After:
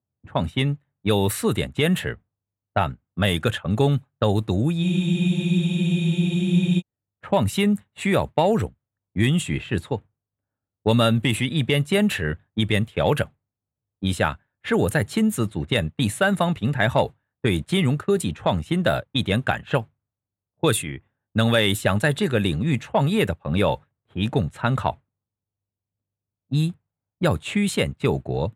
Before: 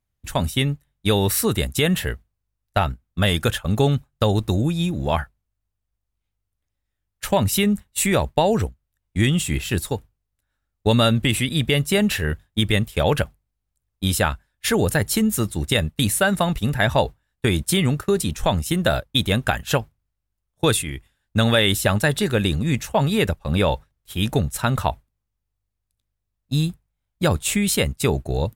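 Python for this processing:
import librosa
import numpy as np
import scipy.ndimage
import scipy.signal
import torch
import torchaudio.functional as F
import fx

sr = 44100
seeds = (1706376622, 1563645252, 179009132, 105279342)

y = 10.0 ** (-6.5 / 20.0) * np.tanh(x / 10.0 ** (-6.5 / 20.0))
y = scipy.signal.sosfilt(scipy.signal.butter(4, 92.0, 'highpass', fs=sr, output='sos'), y)
y = fx.peak_eq(y, sr, hz=5300.0, db=-10.5, octaves=0.64)
y = fx.env_lowpass(y, sr, base_hz=750.0, full_db=-15.5)
y = fx.spec_freeze(y, sr, seeds[0], at_s=4.85, hold_s=1.95)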